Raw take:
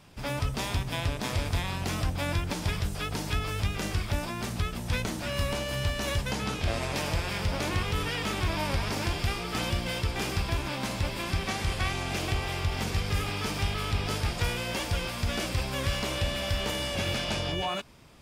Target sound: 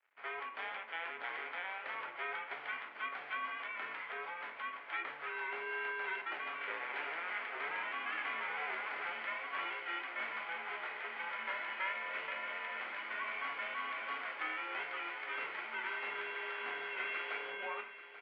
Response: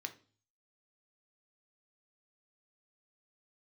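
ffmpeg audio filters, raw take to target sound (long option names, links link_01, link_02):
-filter_complex "[1:a]atrim=start_sample=2205,asetrate=28224,aresample=44100[link_01];[0:a][link_01]afir=irnorm=-1:irlink=0,aeval=exprs='sgn(val(0))*max(abs(val(0))-0.00224,0)':channel_layout=same,highpass=frequency=420:width_type=q:width=0.5412,highpass=frequency=420:width_type=q:width=1.307,lowpass=frequency=2400:width_type=q:width=0.5176,lowpass=frequency=2400:width_type=q:width=0.7071,lowpass=frequency=2400:width_type=q:width=1.932,afreqshift=-170,aderivative,aecho=1:1:837|1674|2511|3348|4185:0.2|0.102|0.0519|0.0265|0.0135,volume=10dB"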